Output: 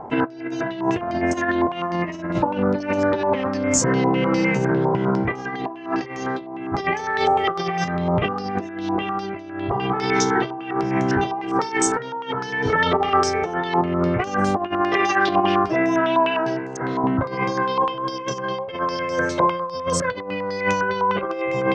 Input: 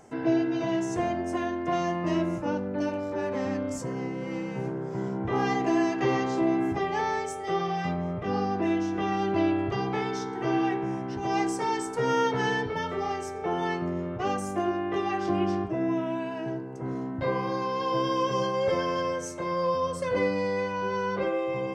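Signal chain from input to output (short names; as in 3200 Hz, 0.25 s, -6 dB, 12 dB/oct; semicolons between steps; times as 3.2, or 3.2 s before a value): 14.81–17.04 low shelf 350 Hz -11.5 dB; negative-ratio compressor -32 dBFS, ratio -0.5; stepped low-pass 9.9 Hz 950–6700 Hz; gain +9 dB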